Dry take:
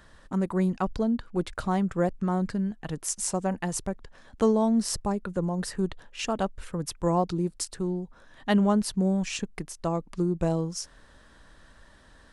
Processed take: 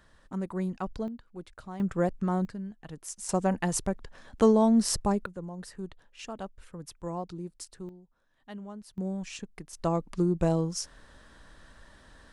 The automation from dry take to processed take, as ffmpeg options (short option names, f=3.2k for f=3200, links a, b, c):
-af "asetnsamples=n=441:p=0,asendcmd='1.08 volume volume -14.5dB;1.8 volume volume -1.5dB;2.45 volume volume -9.5dB;3.29 volume volume 1.5dB;5.26 volume volume -11dB;7.89 volume volume -20dB;8.98 volume volume -8.5dB;9.73 volume volume 0.5dB',volume=-6.5dB"